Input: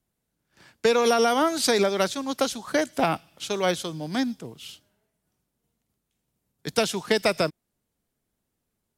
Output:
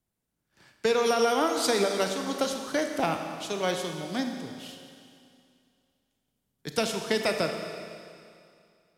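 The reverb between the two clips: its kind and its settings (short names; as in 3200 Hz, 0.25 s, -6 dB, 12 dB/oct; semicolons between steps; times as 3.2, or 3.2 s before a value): Schroeder reverb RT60 2.4 s, combs from 28 ms, DRR 4.5 dB; gain -4.5 dB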